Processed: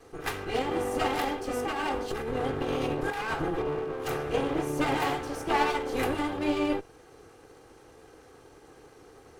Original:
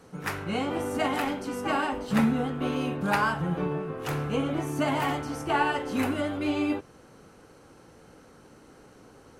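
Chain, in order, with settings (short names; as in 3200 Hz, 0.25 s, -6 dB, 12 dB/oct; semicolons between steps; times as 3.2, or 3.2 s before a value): minimum comb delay 2.5 ms; bell 490 Hz +3.5 dB 0.99 oct; 1.49–3.68 negative-ratio compressor -30 dBFS, ratio -1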